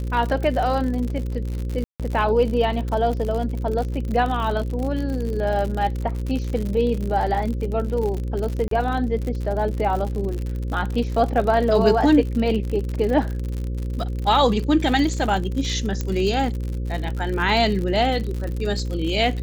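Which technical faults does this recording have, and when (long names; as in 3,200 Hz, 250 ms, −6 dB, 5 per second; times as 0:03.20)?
mains buzz 60 Hz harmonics 9 −26 dBFS
surface crackle 71 per second −27 dBFS
0:01.84–0:02.00: drop-out 157 ms
0:08.68–0:08.71: drop-out 33 ms
0:16.01: click −12 dBFS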